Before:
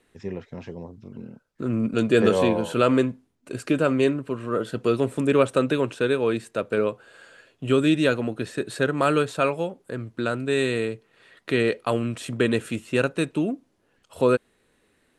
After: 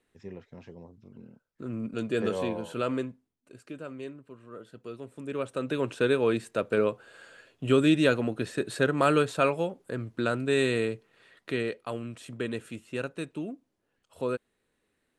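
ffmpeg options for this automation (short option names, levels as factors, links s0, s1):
-af "volume=2.24,afade=t=out:st=2.89:d=0.7:silence=0.354813,afade=t=in:st=5.11:d=0.49:silence=0.398107,afade=t=in:st=5.6:d=0.42:silence=0.354813,afade=t=out:st=10.93:d=0.84:silence=0.354813"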